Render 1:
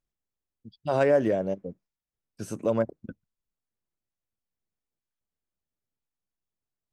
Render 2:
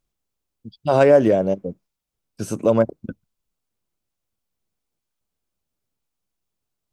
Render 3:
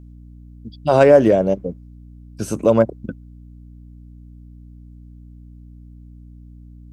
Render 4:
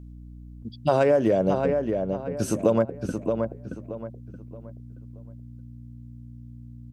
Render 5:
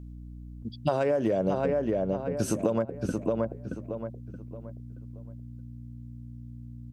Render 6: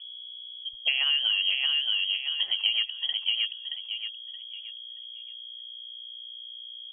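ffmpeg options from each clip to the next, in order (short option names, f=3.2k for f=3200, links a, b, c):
-af "equalizer=f=1.8k:t=o:w=0.37:g=-5,volume=8.5dB"
-af "aeval=exprs='val(0)+0.00794*(sin(2*PI*60*n/s)+sin(2*PI*2*60*n/s)/2+sin(2*PI*3*60*n/s)/3+sin(2*PI*4*60*n/s)/4+sin(2*PI*5*60*n/s)/5)':c=same,volume=2.5dB"
-filter_complex "[0:a]acompressor=threshold=-15dB:ratio=6,asplit=2[a][b];[b]adelay=625,lowpass=f=2.9k:p=1,volume=-5dB,asplit=2[c][d];[d]adelay=625,lowpass=f=2.9k:p=1,volume=0.33,asplit=2[e][f];[f]adelay=625,lowpass=f=2.9k:p=1,volume=0.33,asplit=2[g][h];[h]adelay=625,lowpass=f=2.9k:p=1,volume=0.33[i];[c][e][g][i]amix=inputs=4:normalize=0[j];[a][j]amix=inputs=2:normalize=0,volume=-1.5dB"
-af "acompressor=threshold=-22dB:ratio=6"
-af "lowpass=f=2.9k:t=q:w=0.5098,lowpass=f=2.9k:t=q:w=0.6013,lowpass=f=2.9k:t=q:w=0.9,lowpass=f=2.9k:t=q:w=2.563,afreqshift=-3400"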